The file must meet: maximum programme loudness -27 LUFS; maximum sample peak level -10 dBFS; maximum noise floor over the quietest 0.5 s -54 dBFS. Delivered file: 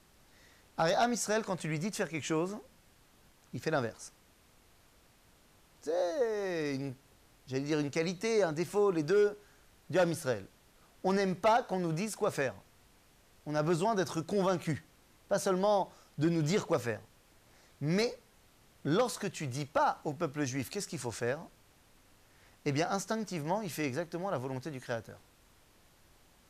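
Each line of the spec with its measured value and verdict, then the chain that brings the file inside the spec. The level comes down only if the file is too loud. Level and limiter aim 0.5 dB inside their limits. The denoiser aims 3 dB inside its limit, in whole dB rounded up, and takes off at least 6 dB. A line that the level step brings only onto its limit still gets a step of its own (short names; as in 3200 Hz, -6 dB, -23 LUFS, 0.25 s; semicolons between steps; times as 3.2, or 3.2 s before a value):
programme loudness -33.0 LUFS: OK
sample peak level -19.5 dBFS: OK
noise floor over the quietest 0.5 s -64 dBFS: OK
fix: none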